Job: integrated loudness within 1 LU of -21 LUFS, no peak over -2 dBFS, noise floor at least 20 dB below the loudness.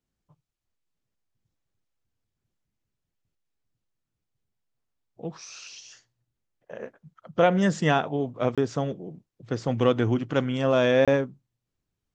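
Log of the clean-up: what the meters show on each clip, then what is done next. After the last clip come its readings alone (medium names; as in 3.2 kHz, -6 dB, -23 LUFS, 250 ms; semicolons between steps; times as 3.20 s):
dropouts 2; longest dropout 26 ms; loudness -24.5 LUFS; peak level -7.0 dBFS; loudness target -21.0 LUFS
-> interpolate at 8.55/11.05 s, 26 ms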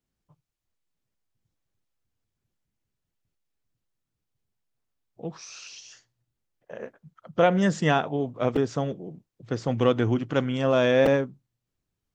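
dropouts 0; loudness -24.5 LUFS; peak level -7.0 dBFS; loudness target -21.0 LUFS
-> trim +3.5 dB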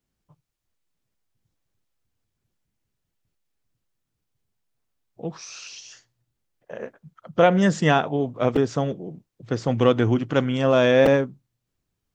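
loudness -21.0 LUFS; peak level -3.5 dBFS; noise floor -80 dBFS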